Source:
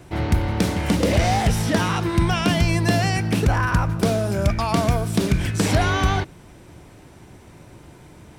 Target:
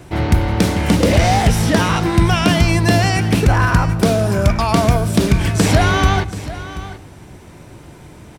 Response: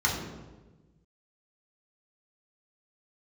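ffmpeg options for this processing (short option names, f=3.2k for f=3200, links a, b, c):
-filter_complex "[0:a]aecho=1:1:732:0.178,asplit=2[a][b];[1:a]atrim=start_sample=2205,adelay=101[c];[b][c]afir=irnorm=-1:irlink=0,volume=-32.5dB[d];[a][d]amix=inputs=2:normalize=0,volume=5.5dB"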